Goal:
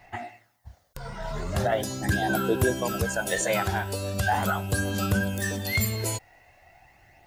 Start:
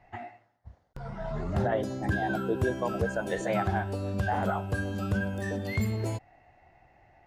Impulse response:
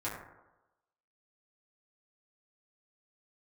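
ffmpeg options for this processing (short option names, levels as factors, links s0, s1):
-af "aphaser=in_gain=1:out_gain=1:delay=2.1:decay=0.35:speed=0.4:type=sinusoidal,crystalizer=i=6.5:c=0"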